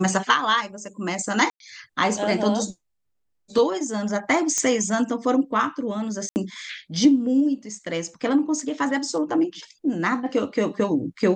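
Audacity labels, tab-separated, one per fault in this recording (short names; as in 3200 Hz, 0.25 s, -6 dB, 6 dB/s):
1.500000	1.600000	gap 0.102 s
4.580000	4.580000	pop -10 dBFS
6.290000	6.360000	gap 69 ms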